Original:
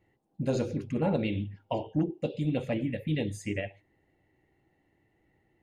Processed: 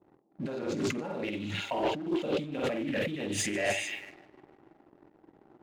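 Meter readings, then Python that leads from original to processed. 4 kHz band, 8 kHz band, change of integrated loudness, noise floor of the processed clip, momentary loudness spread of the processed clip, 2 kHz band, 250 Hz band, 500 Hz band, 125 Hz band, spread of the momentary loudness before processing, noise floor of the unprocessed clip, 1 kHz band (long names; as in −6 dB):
+7.5 dB, +13.0 dB, −0.5 dB, −65 dBFS, 7 LU, +7.5 dB, −2.5 dB, +0.5 dB, −9.0 dB, 6 LU, −72 dBFS, +3.5 dB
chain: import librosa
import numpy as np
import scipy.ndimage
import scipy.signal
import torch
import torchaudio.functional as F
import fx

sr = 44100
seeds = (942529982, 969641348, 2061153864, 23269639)

y = fx.doubler(x, sr, ms=48.0, db=-3.5)
y = fx.echo_wet_highpass(y, sr, ms=150, feedback_pct=74, hz=4500.0, wet_db=-5)
y = fx.over_compress(y, sr, threshold_db=-39.0, ratio=-1.0)
y = fx.high_shelf(y, sr, hz=7600.0, db=-7.5)
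y = fx.env_lowpass(y, sr, base_hz=490.0, full_db=-35.5)
y = fx.notch(y, sr, hz=500.0, q=12.0)
y = fx.env_lowpass(y, sr, base_hz=1200.0, full_db=-33.5)
y = scipy.signal.sosfilt(scipy.signal.butter(2, 250.0, 'highpass', fs=sr, output='sos'), y)
y = fx.peak_eq(y, sr, hz=1300.0, db=7.0, octaves=0.77)
y = fx.leveller(y, sr, passes=2)
y = fx.doppler_dist(y, sr, depth_ms=0.15)
y = y * 10.0 ** (3.0 / 20.0)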